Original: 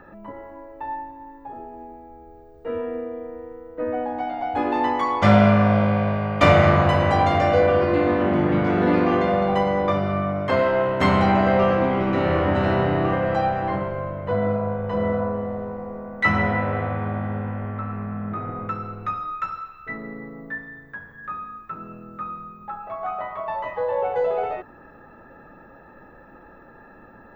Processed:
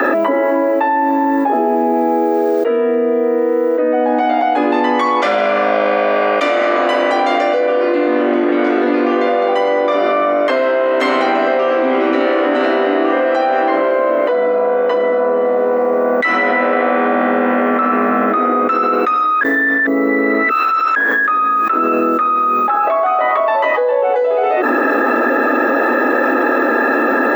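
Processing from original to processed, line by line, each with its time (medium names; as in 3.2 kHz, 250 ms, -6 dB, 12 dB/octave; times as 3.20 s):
19.41–20.96 s: reverse
whole clip: steep high-pass 240 Hz 96 dB/octave; peaking EQ 910 Hz -6 dB 0.47 oct; level flattener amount 100%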